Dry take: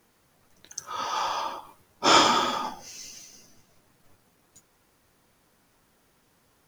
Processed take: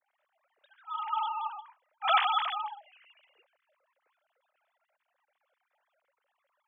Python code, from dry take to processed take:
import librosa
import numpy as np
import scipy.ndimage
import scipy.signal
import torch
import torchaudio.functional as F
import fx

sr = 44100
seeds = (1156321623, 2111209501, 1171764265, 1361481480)

y = fx.sine_speech(x, sr)
y = F.gain(torch.from_numpy(y), -6.0).numpy()